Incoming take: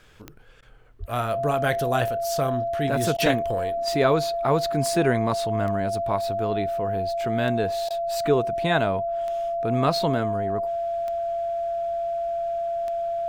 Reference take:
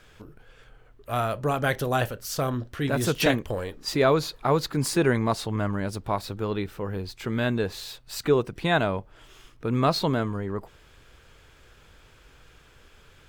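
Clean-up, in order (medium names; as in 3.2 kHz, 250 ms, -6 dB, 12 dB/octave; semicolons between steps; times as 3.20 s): de-click; band-stop 680 Hz, Q 30; de-plosive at 0.99 s; interpolate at 0.61/3.17/7.89 s, 13 ms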